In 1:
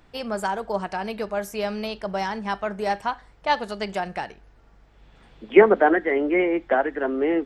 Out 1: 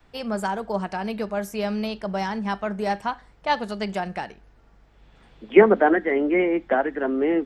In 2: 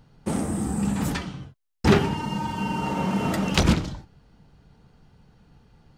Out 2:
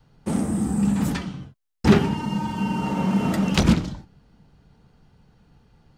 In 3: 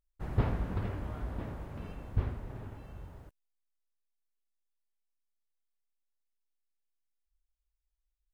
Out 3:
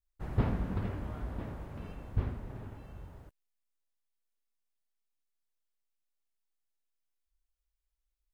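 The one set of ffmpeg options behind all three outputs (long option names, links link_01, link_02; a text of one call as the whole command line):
ffmpeg -i in.wav -af "adynamicequalizer=threshold=0.0112:dfrequency=210:dqfactor=1.6:tfrequency=210:tqfactor=1.6:attack=5:release=100:ratio=0.375:range=3:mode=boostabove:tftype=bell,volume=-1dB" out.wav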